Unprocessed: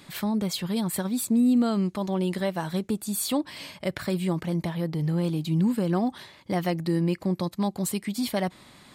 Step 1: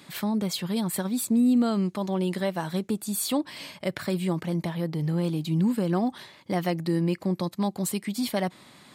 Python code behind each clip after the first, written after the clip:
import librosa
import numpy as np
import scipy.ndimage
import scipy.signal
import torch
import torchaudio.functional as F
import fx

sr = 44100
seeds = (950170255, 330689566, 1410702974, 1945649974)

y = scipy.signal.sosfilt(scipy.signal.butter(2, 110.0, 'highpass', fs=sr, output='sos'), x)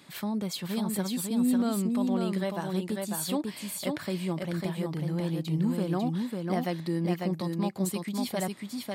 y = x + 10.0 ** (-3.5 / 20.0) * np.pad(x, (int(547 * sr / 1000.0), 0))[:len(x)]
y = F.gain(torch.from_numpy(y), -4.5).numpy()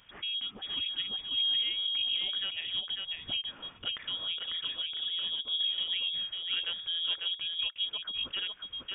y = fx.freq_invert(x, sr, carrier_hz=3500)
y = F.gain(torch.from_numpy(y), -4.5).numpy()